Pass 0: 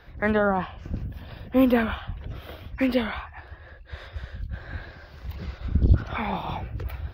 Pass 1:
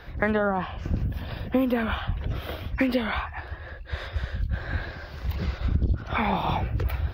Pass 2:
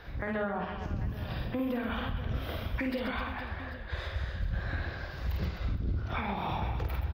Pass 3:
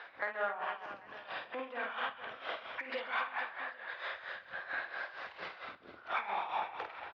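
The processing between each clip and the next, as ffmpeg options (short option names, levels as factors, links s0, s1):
-af "acompressor=threshold=0.0501:ratio=16,volume=2.11"
-filter_complex "[0:a]asplit=2[s0][s1];[s1]aecho=0:1:50|130|258|462.8|790.5:0.631|0.398|0.251|0.158|0.1[s2];[s0][s2]amix=inputs=2:normalize=0,alimiter=limit=0.106:level=0:latency=1:release=288,volume=0.631"
-filter_complex "[0:a]asplit=2[s0][s1];[s1]highpass=f=720:p=1,volume=2.82,asoftclip=type=tanh:threshold=0.0708[s2];[s0][s2]amix=inputs=2:normalize=0,lowpass=f=2600:p=1,volume=0.501,tremolo=f=4.4:d=0.73,highpass=670,lowpass=3600,volume=1.33"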